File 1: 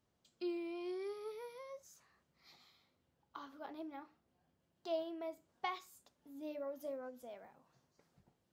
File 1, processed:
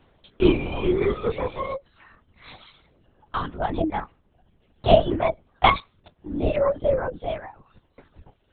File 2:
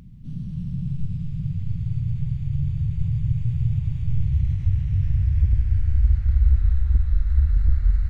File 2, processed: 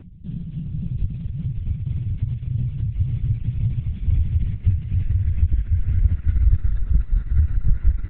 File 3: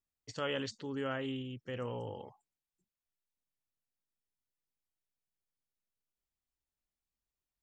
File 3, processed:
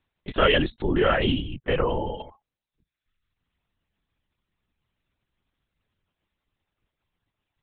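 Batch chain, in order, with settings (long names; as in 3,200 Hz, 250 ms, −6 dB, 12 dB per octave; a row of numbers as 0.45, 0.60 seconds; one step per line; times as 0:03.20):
reverb reduction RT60 1.1 s
linear-prediction vocoder at 8 kHz whisper
loudness normalisation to −24 LKFS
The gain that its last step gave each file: +23.5, +2.5, +17.5 decibels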